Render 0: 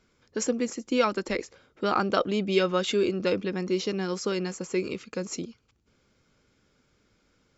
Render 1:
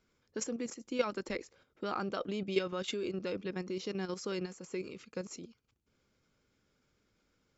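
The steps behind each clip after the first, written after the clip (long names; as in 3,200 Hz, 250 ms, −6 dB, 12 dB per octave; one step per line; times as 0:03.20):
output level in coarse steps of 10 dB
level −5.5 dB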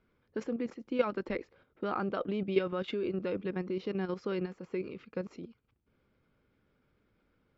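high-frequency loss of the air 360 metres
level +4 dB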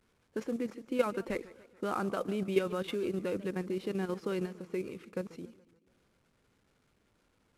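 variable-slope delta modulation 64 kbit/s
feedback echo with a swinging delay time 143 ms, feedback 53%, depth 181 cents, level −19 dB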